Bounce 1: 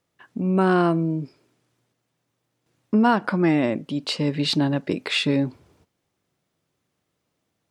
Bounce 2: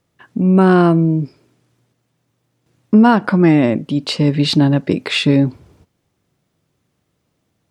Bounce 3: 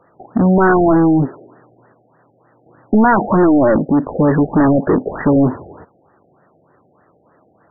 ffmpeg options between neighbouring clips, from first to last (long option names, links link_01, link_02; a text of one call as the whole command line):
ffmpeg -i in.wav -af "lowshelf=frequency=240:gain=8,volume=5dB" out.wav
ffmpeg -i in.wav -filter_complex "[0:a]equalizer=frequency=160:width=0.38:gain=-4.5,asplit=2[link_01][link_02];[link_02]highpass=frequency=720:poles=1,volume=35dB,asoftclip=type=tanh:threshold=-0.5dB[link_03];[link_01][link_03]amix=inputs=2:normalize=0,lowpass=frequency=1700:poles=1,volume=-6dB,afftfilt=real='re*lt(b*sr/1024,780*pow(2000/780,0.5+0.5*sin(2*PI*3.3*pts/sr)))':imag='im*lt(b*sr/1024,780*pow(2000/780,0.5+0.5*sin(2*PI*3.3*pts/sr)))':win_size=1024:overlap=0.75,volume=-3dB" out.wav